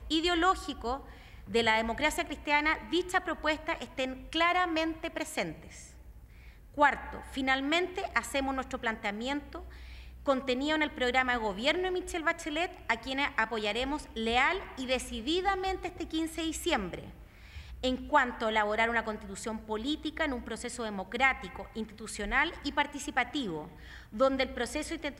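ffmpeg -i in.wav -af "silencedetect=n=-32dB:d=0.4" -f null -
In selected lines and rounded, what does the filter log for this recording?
silence_start: 0.96
silence_end: 1.53 | silence_duration: 0.57
silence_start: 5.52
silence_end: 6.78 | silence_duration: 1.26
silence_start: 9.56
silence_end: 10.28 | silence_duration: 0.71
silence_start: 16.98
silence_end: 17.84 | silence_duration: 0.85
silence_start: 23.61
silence_end: 24.16 | silence_duration: 0.55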